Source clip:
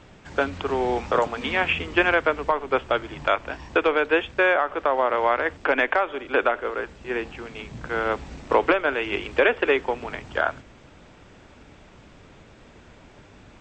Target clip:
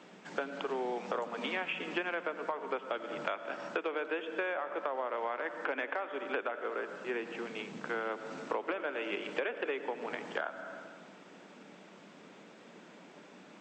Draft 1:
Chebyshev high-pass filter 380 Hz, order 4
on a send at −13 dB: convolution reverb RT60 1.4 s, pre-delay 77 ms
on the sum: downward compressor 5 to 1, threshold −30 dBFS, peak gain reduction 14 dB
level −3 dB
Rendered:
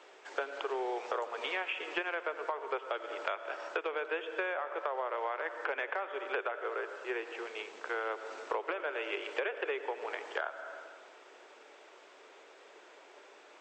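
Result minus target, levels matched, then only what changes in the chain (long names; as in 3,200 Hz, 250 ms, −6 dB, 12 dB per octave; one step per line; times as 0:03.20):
250 Hz band −6.0 dB
change: Chebyshev high-pass filter 180 Hz, order 4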